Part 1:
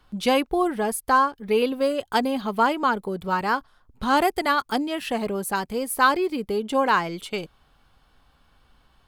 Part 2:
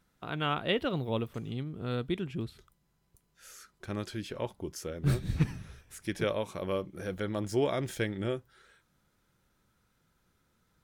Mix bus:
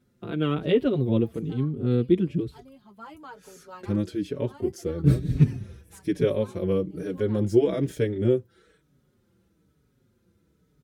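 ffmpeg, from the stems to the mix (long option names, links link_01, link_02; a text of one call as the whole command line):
ffmpeg -i stem1.wav -i stem2.wav -filter_complex "[0:a]flanger=delay=9.4:depth=5.7:regen=32:speed=0.38:shape=triangular,adelay=400,volume=-11.5dB[link_01];[1:a]lowshelf=frequency=580:width_type=q:width=1.5:gain=10.5,volume=1dB,asplit=2[link_02][link_03];[link_03]apad=whole_len=418001[link_04];[link_01][link_04]sidechaincompress=threshold=-31dB:ratio=12:attack=10:release=973[link_05];[link_05][link_02]amix=inputs=2:normalize=0,highpass=64,asplit=2[link_06][link_07];[link_07]adelay=5.1,afreqshift=-1.1[link_08];[link_06][link_08]amix=inputs=2:normalize=1" out.wav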